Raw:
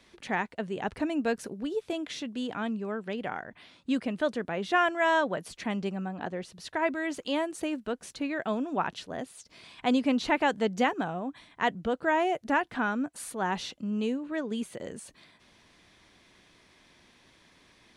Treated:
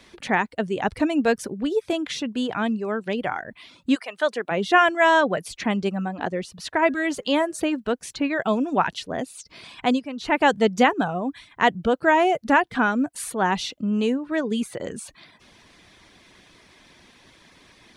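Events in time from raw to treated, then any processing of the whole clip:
3.94–4.50 s: high-pass 1.1 kHz -> 340 Hz
6.77–7.60 s: de-hum 207.3 Hz, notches 10
9.77–10.48 s: dip -13.5 dB, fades 0.32 s
whole clip: reverb removal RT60 0.5 s; trim +8.5 dB

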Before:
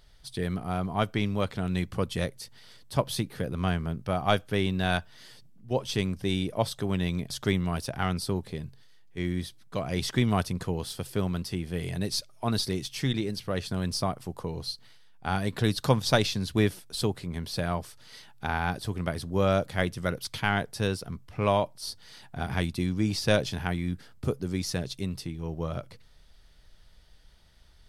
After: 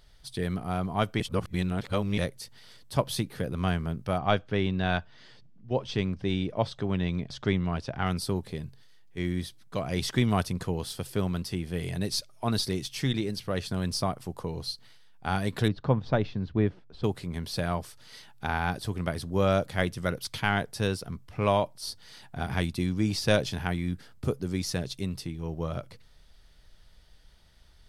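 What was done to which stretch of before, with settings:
1.20–2.18 s: reverse
4.18–8.06 s: distance through air 140 m
15.68–17.04 s: tape spacing loss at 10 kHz 45 dB

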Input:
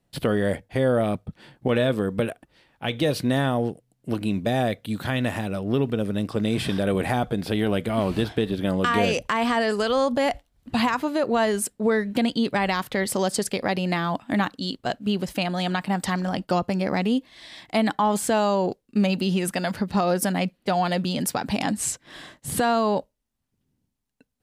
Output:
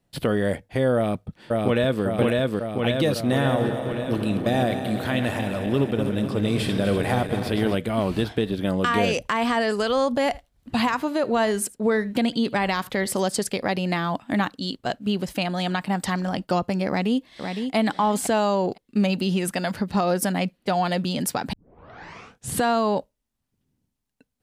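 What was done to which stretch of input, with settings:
0.95–2.04 s: echo throw 550 ms, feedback 70%, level -1 dB
3.31–7.75 s: backward echo that repeats 124 ms, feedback 78%, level -9 dB
10.22–13.25 s: delay 78 ms -22 dB
16.88–17.75 s: echo throw 510 ms, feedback 15%, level -6 dB
21.53 s: tape start 1.02 s

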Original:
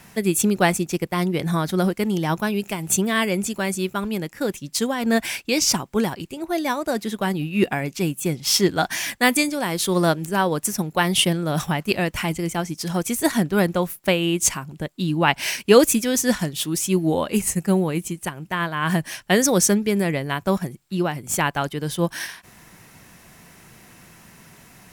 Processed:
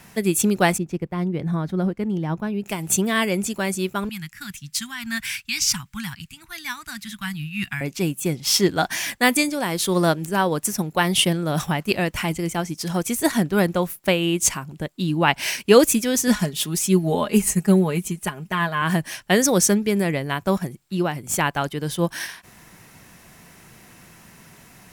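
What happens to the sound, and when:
0.78–2.66 s: FFT filter 150 Hz 0 dB, 380 Hz -4 dB, 1.8 kHz -9 dB, 11 kHz -21 dB
4.09–7.81 s: Chebyshev band-stop 140–1600 Hz
16.27–18.82 s: comb 4.8 ms, depth 60%

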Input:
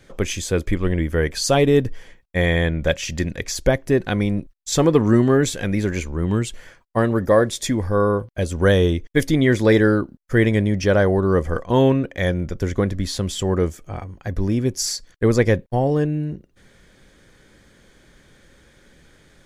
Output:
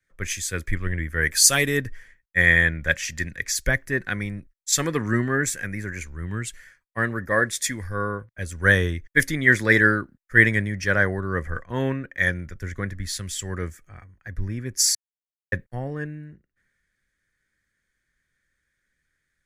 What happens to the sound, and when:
1.21–1.77 s: treble shelf 5.8 kHz -> 9.1 kHz +9.5 dB
5.36–6.01 s: peaking EQ 3.6 kHz -9.5 dB
14.95–15.52 s: mute
whole clip: FFT filter 110 Hz 0 dB, 410 Hz -5 dB, 870 Hz -5 dB, 1.8 kHz +14 dB, 3 kHz 0 dB, 9.4 kHz +8 dB; three bands expanded up and down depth 70%; trim -6.5 dB

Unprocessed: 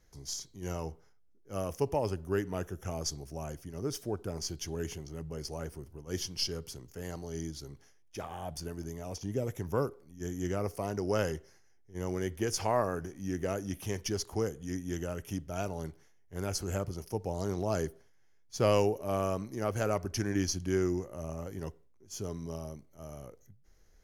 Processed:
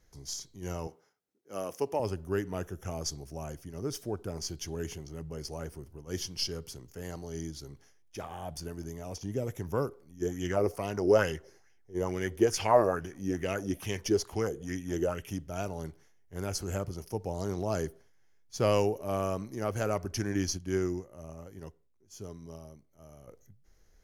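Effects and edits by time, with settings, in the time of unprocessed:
0.87–2.00 s: high-pass 240 Hz
10.22–15.29 s: sweeping bell 2.3 Hz 350–3000 Hz +12 dB
20.57–23.28 s: upward expansion, over -41 dBFS

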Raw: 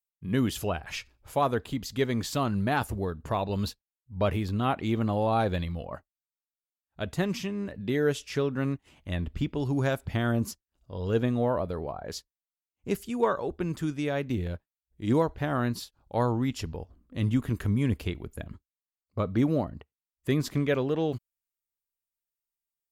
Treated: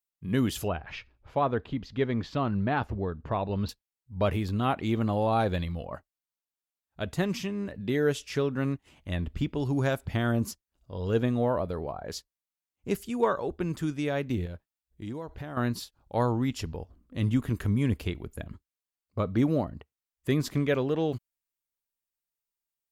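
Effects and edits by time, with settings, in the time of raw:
0.68–3.69 s: distance through air 250 m
14.45–15.57 s: compression, threshold -34 dBFS

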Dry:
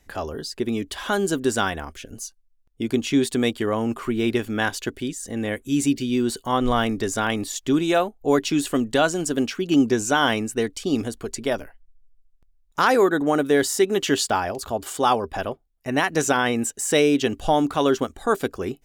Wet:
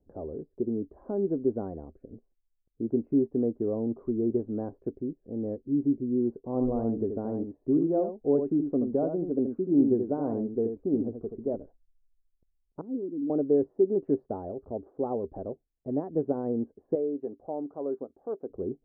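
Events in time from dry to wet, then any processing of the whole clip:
6.36–11.55 s: delay 79 ms -6.5 dB
12.81–13.30 s: cascade formant filter i
16.95–18.50 s: high-pass 820 Hz 6 dB/octave
whole clip: inverse Chebyshev low-pass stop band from 3 kHz, stop band 80 dB; tilt EQ +2.5 dB/octave

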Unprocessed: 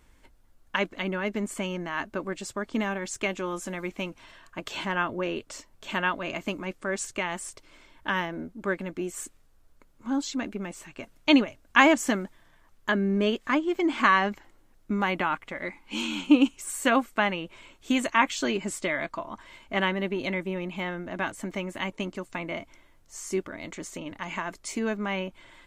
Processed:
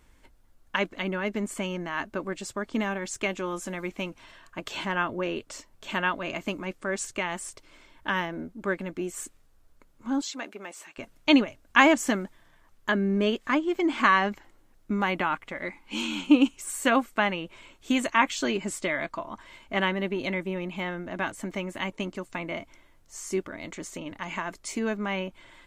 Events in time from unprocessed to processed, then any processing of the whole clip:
10.21–10.98 s: high-pass 470 Hz

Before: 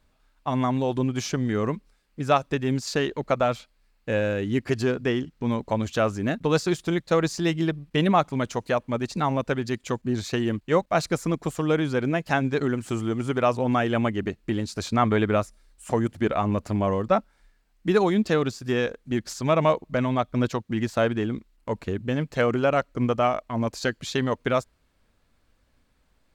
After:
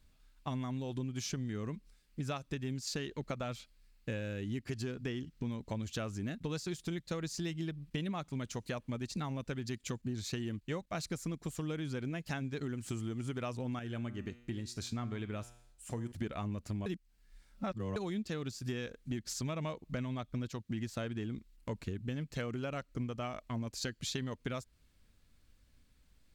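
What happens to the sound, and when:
13.79–16.12 s: feedback comb 120 Hz, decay 0.67 s
16.86–17.96 s: reverse
whole clip: peaking EQ 770 Hz -11.5 dB 2.7 oct; compression 6:1, threshold -36 dBFS; trim +1 dB

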